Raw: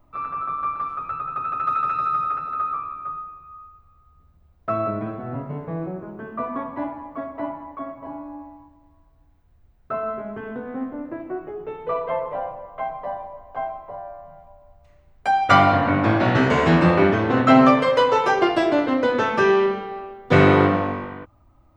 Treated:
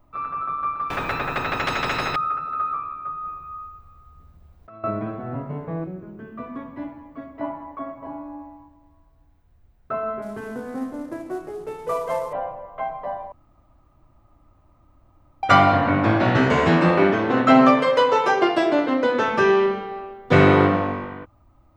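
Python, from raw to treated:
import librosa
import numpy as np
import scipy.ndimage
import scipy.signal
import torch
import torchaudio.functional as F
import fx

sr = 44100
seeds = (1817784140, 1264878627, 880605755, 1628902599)

y = fx.spectral_comp(x, sr, ratio=4.0, at=(0.9, 2.16))
y = fx.over_compress(y, sr, threshold_db=-36.0, ratio=-1.0, at=(3.21, 4.84))
y = fx.peak_eq(y, sr, hz=870.0, db=-12.0, octaves=1.8, at=(5.84, 7.41))
y = fx.cvsd(y, sr, bps=64000, at=(10.22, 12.33))
y = fx.highpass(y, sr, hz=160.0, slope=12, at=(16.69, 19.27))
y = fx.edit(y, sr, fx.room_tone_fill(start_s=13.32, length_s=2.11), tone=tone)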